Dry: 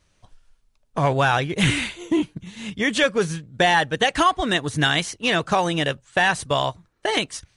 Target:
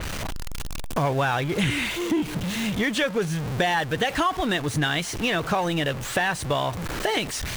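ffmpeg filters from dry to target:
ffmpeg -i in.wav -af "aeval=exprs='val(0)+0.5*0.0562*sgn(val(0))':channel_layout=same,acompressor=threshold=-25dB:ratio=2.5,adynamicequalizer=threshold=0.01:dfrequency=3700:dqfactor=0.7:tfrequency=3700:tqfactor=0.7:attack=5:release=100:ratio=0.375:range=2.5:mode=cutabove:tftype=highshelf,volume=1.5dB" out.wav

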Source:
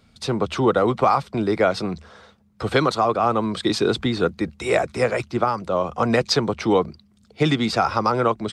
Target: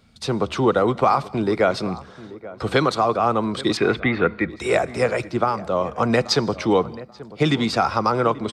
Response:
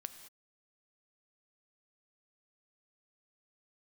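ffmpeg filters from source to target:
-filter_complex "[0:a]asettb=1/sr,asplit=3[link_01][link_02][link_03];[link_01]atrim=end=3.774[link_04];[link_02]atrim=start=3.77:end=4.5,asetpts=PTS-STARTPTS,afade=type=in:duration=0.004:curve=qsin,afade=type=out:start_time=0.726:duration=0.004:curve=qsin,lowpass=frequency=2100:width_type=q:width=3.8[link_05];[link_03]atrim=start=4.496[link_06];[link_04][link_05]acrossfade=duration=0.004:curve1=hsin:curve2=qsin[link_07];[link_07][link_06]acrossfade=duration=0.004:curve1=qsin:curve2=hsin,asplit=2[link_08][link_09];[link_09]adelay=834,lowpass=frequency=1300:poles=1,volume=-17dB,asplit=2[link_10][link_11];[link_11]adelay=834,lowpass=frequency=1300:poles=1,volume=0.29,asplit=2[link_12][link_13];[link_13]adelay=834,lowpass=frequency=1300:poles=1,volume=0.29[link_14];[link_08][link_10][link_12][link_14]amix=inputs=4:normalize=0,asplit=2[link_15][link_16];[1:a]atrim=start_sample=2205[link_17];[link_16][link_17]afir=irnorm=-1:irlink=0,volume=-5dB[link_18];[link_15][link_18]amix=inputs=2:normalize=0,volume=-2.5dB"

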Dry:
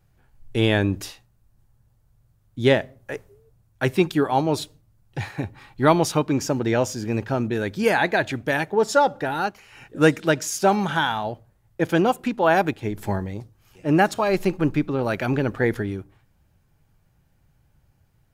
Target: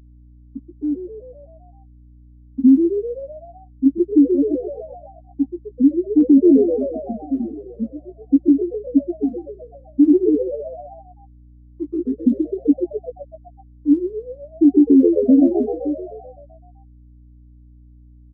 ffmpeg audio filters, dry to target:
ffmpeg -i in.wav -filter_complex "[0:a]highshelf=frequency=3100:gain=-7.5,acompressor=threshold=-25dB:ratio=2,asplit=3[link_01][link_02][link_03];[link_01]bandpass=frequency=270:width_type=q:width=8,volume=0dB[link_04];[link_02]bandpass=frequency=2290:width_type=q:width=8,volume=-6dB[link_05];[link_03]bandpass=frequency=3010:width_type=q:width=8,volume=-9dB[link_06];[link_04][link_05][link_06]amix=inputs=3:normalize=0,afftfilt=real='re*gte(hypot(re,im),0.158)':imag='im*gte(hypot(re,im),0.158)':win_size=1024:overlap=0.75,aphaser=in_gain=1:out_gain=1:delay=4.5:decay=0.63:speed=0.16:type=triangular,asplit=8[link_07][link_08][link_09][link_10][link_11][link_12][link_13][link_14];[link_08]adelay=128,afreqshift=70,volume=-11dB[link_15];[link_09]adelay=256,afreqshift=140,volume=-15.6dB[link_16];[link_10]adelay=384,afreqshift=210,volume=-20.2dB[link_17];[link_11]adelay=512,afreqshift=280,volume=-24.7dB[link_18];[link_12]adelay=640,afreqshift=350,volume=-29.3dB[link_19];[link_13]adelay=768,afreqshift=420,volume=-33.9dB[link_20];[link_14]adelay=896,afreqshift=490,volume=-38.5dB[link_21];[link_07][link_15][link_16][link_17][link_18][link_19][link_20][link_21]amix=inputs=8:normalize=0,deesser=0.85,highpass=200,aeval=exprs='val(0)+0.000501*(sin(2*PI*60*n/s)+sin(2*PI*2*60*n/s)/2+sin(2*PI*3*60*n/s)/3+sin(2*PI*4*60*n/s)/4+sin(2*PI*5*60*n/s)/5)':channel_layout=same,asplit=2[link_22][link_23];[link_23]adelay=14,volume=-7dB[link_24];[link_22][link_24]amix=inputs=2:normalize=0,alimiter=level_in=24dB:limit=-1dB:release=50:level=0:latency=1,volume=-4dB" out.wav

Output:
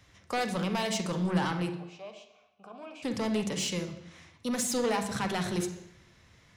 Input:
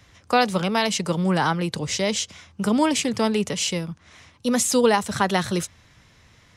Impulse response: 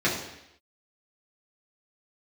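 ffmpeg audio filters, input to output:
-filter_complex "[0:a]asoftclip=type=tanh:threshold=-19dB,asplit=3[link_01][link_02][link_03];[link_01]afade=type=out:start_time=1.7:duration=0.02[link_04];[link_02]asplit=3[link_05][link_06][link_07];[link_05]bandpass=frequency=730:width_type=q:width=8,volume=0dB[link_08];[link_06]bandpass=frequency=1090:width_type=q:width=8,volume=-6dB[link_09];[link_07]bandpass=frequency=2440:width_type=q:width=8,volume=-9dB[link_10];[link_08][link_09][link_10]amix=inputs=3:normalize=0,afade=type=in:start_time=1.7:duration=0.02,afade=type=out:start_time=3.02:duration=0.02[link_11];[link_03]afade=type=in:start_time=3.02:duration=0.02[link_12];[link_04][link_11][link_12]amix=inputs=3:normalize=0,asplit=2[link_13][link_14];[1:a]atrim=start_sample=2205,adelay=41[link_15];[link_14][link_15]afir=irnorm=-1:irlink=0,volume=-20dB[link_16];[link_13][link_16]amix=inputs=2:normalize=0,volume=-6.5dB"

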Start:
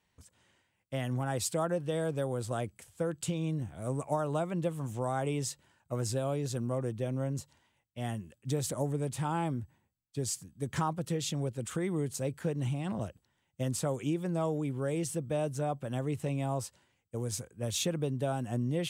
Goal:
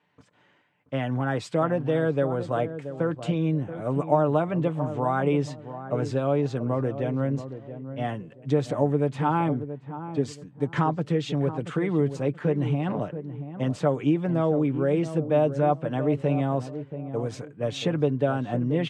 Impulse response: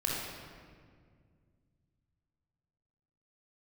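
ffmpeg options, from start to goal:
-filter_complex "[0:a]highpass=170,lowpass=2400,aecho=1:1:6.8:0.42,asplit=2[link_01][link_02];[link_02]adelay=679,lowpass=frequency=810:poles=1,volume=-10dB,asplit=2[link_03][link_04];[link_04]adelay=679,lowpass=frequency=810:poles=1,volume=0.31,asplit=2[link_05][link_06];[link_06]adelay=679,lowpass=frequency=810:poles=1,volume=0.31[link_07];[link_01][link_03][link_05][link_07]amix=inputs=4:normalize=0,volume=8.5dB"

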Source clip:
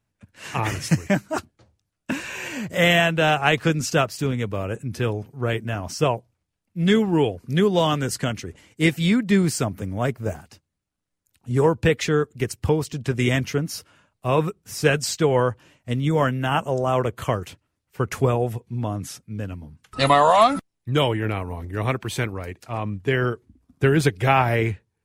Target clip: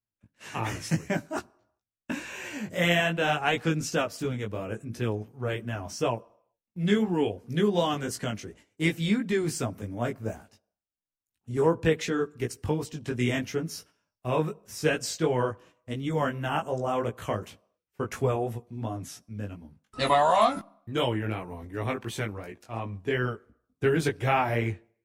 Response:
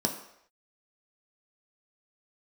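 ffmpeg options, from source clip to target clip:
-filter_complex "[0:a]agate=range=-13dB:threshold=-45dB:ratio=16:detection=peak,flanger=delay=16.5:depth=3.2:speed=2.8,asplit=2[link_01][link_02];[1:a]atrim=start_sample=2205[link_03];[link_02][link_03]afir=irnorm=-1:irlink=0,volume=-25.5dB[link_04];[link_01][link_04]amix=inputs=2:normalize=0,volume=-4dB"

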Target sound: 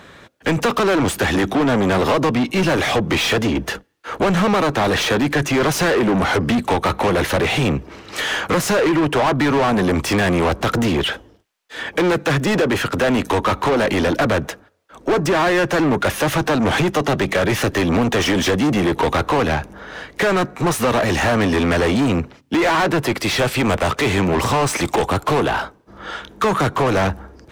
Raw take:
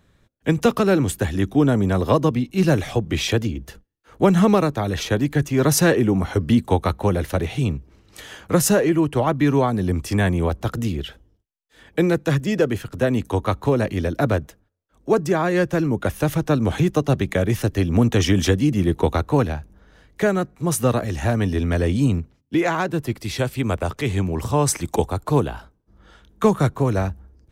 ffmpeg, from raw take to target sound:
ffmpeg -i in.wav -filter_complex "[0:a]acompressor=threshold=-19dB:ratio=6,asplit=2[link_01][link_02];[link_02]highpass=frequency=720:poles=1,volume=30dB,asoftclip=type=tanh:threshold=-11dB[link_03];[link_01][link_03]amix=inputs=2:normalize=0,lowpass=frequency=2600:poles=1,volume=-6dB,volume=1.5dB" out.wav

